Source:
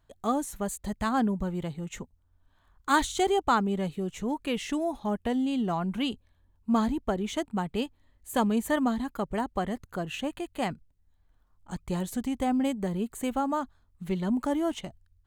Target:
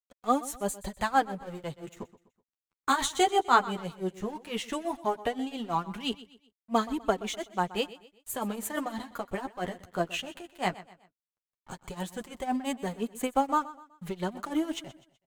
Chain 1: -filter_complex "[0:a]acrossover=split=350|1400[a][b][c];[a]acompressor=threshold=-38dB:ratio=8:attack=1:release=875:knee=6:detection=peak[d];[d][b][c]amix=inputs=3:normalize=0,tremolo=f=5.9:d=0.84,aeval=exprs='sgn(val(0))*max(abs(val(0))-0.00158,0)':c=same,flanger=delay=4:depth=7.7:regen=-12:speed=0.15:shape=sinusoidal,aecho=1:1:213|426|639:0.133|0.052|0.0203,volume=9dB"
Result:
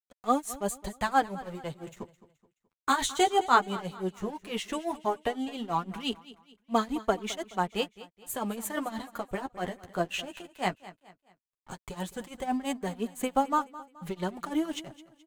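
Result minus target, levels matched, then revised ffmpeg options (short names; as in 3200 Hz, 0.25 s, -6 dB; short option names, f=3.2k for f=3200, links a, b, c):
echo 88 ms late
-filter_complex "[0:a]acrossover=split=350|1400[a][b][c];[a]acompressor=threshold=-38dB:ratio=8:attack=1:release=875:knee=6:detection=peak[d];[d][b][c]amix=inputs=3:normalize=0,tremolo=f=5.9:d=0.84,aeval=exprs='sgn(val(0))*max(abs(val(0))-0.00158,0)':c=same,flanger=delay=4:depth=7.7:regen=-12:speed=0.15:shape=sinusoidal,aecho=1:1:125|250|375:0.133|0.052|0.0203,volume=9dB"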